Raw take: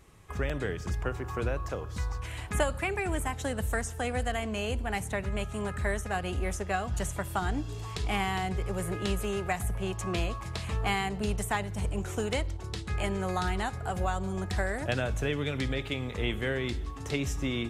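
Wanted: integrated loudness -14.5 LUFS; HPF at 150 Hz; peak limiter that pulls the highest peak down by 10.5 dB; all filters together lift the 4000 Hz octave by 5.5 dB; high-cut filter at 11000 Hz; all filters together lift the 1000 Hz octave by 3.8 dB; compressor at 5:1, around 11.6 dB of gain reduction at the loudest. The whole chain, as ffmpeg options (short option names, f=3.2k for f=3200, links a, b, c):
-af "highpass=150,lowpass=11k,equalizer=f=1k:t=o:g=5,equalizer=f=4k:t=o:g=7,acompressor=threshold=-35dB:ratio=5,volume=25dB,alimiter=limit=-3dB:level=0:latency=1"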